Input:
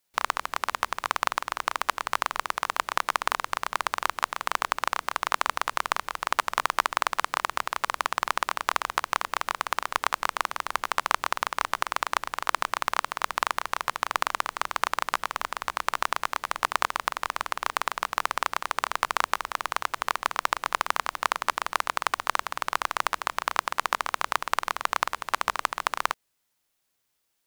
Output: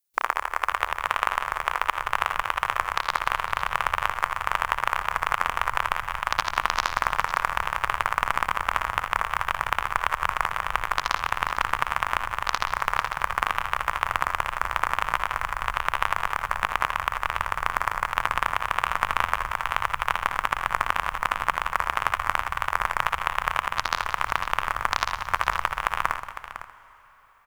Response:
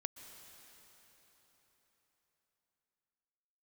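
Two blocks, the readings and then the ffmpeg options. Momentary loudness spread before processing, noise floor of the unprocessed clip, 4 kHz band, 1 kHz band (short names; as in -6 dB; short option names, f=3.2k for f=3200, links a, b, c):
3 LU, -76 dBFS, -0.5 dB, +2.5 dB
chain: -filter_complex "[0:a]asubboost=boost=6.5:cutoff=130,afwtdn=0.0158,alimiter=limit=-7.5dB:level=0:latency=1:release=339,crystalizer=i=2:c=0,aecho=1:1:58|70|179|505:0.188|0.133|0.224|0.251,asplit=2[a][b];[1:a]atrim=start_sample=2205,adelay=82[c];[b][c]afir=irnorm=-1:irlink=0,volume=-9dB[d];[a][d]amix=inputs=2:normalize=0,volume=2.5dB"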